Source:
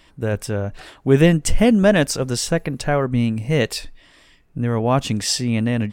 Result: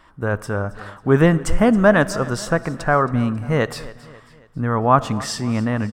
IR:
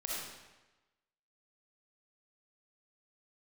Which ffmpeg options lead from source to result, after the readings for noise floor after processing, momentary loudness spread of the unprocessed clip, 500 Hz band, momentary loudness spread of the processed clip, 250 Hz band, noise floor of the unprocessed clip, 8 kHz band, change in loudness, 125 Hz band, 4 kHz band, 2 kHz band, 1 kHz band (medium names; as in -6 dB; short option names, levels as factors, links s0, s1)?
-49 dBFS, 12 LU, +0.5 dB, 12 LU, -1.0 dB, -53 dBFS, -7.0 dB, 0.0 dB, -1.0 dB, -7.0 dB, +3.0 dB, +6.5 dB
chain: -filter_complex "[0:a]firequalizer=gain_entry='entry(480,0);entry(1200,12);entry(2400,-6)':delay=0.05:min_phase=1,aecho=1:1:272|544|816|1088:0.112|0.055|0.0269|0.0132,asplit=2[s0][s1];[1:a]atrim=start_sample=2205[s2];[s1][s2]afir=irnorm=-1:irlink=0,volume=0.106[s3];[s0][s3]amix=inputs=2:normalize=0,volume=0.841"